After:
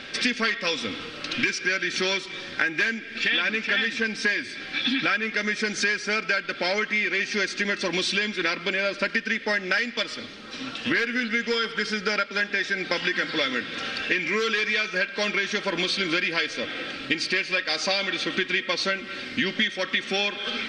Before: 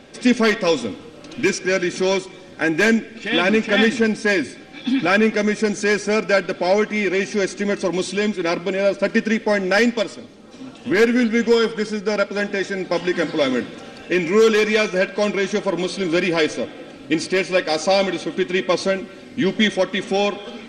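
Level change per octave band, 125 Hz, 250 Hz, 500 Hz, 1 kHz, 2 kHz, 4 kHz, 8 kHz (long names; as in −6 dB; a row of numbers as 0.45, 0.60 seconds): −10.5, −11.5, −12.0, −6.0, −0.5, +1.0, −4.5 decibels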